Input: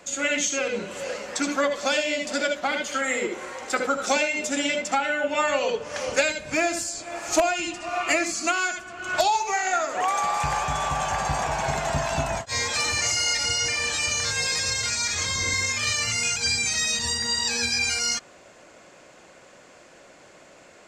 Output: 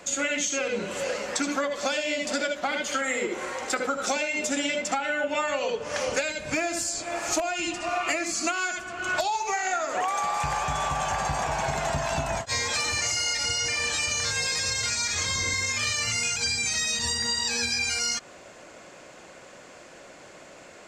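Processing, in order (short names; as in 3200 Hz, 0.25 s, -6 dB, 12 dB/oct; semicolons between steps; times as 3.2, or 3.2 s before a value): compressor, threshold -27 dBFS, peak gain reduction 11.5 dB; gain +3 dB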